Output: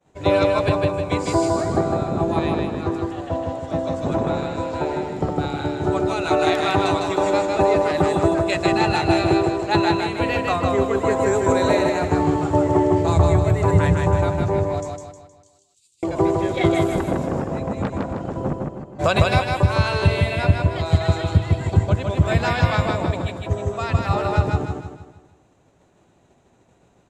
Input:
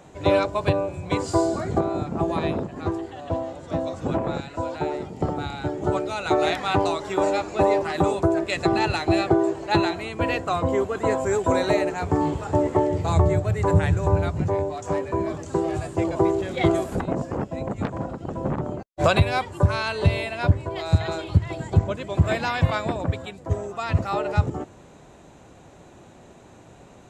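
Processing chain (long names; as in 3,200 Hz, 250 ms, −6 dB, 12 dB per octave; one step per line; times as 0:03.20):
0:14.81–0:16.03: inverse Chebyshev high-pass filter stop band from 1,800 Hz, stop band 40 dB
0:18.53–0:19.19: fade in
downward expander −38 dBFS
repeating echo 156 ms, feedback 43%, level −3 dB
level +1.5 dB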